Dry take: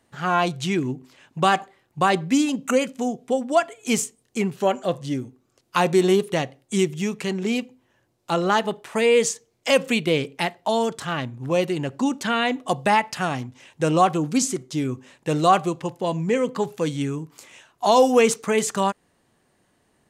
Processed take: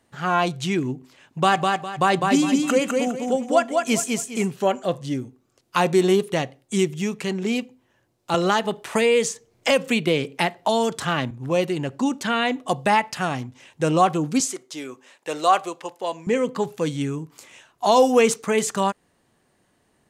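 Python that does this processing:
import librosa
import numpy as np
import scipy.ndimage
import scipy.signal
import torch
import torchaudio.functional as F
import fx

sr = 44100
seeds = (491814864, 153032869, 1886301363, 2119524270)

y = fx.echo_feedback(x, sr, ms=204, feedback_pct=30, wet_db=-3.5, at=(1.46, 4.51), fade=0.02)
y = fx.band_squash(y, sr, depth_pct=70, at=(8.34, 11.31))
y = fx.highpass(y, sr, hz=500.0, slope=12, at=(14.4, 16.27))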